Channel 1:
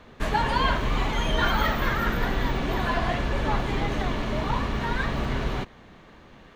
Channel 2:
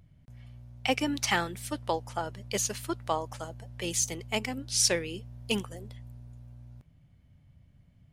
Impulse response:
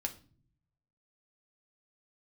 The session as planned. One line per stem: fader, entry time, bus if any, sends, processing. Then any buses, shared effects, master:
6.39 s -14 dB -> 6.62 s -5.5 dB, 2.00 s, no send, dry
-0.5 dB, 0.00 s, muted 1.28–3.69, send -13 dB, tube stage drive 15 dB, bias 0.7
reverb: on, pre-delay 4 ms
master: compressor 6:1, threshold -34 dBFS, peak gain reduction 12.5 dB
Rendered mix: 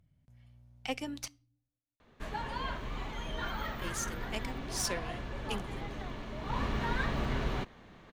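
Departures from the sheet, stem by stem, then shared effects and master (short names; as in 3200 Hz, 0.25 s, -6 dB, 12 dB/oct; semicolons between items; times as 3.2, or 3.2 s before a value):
stem 2 -0.5 dB -> -8.0 dB; master: missing compressor 6:1, threshold -34 dBFS, peak gain reduction 12.5 dB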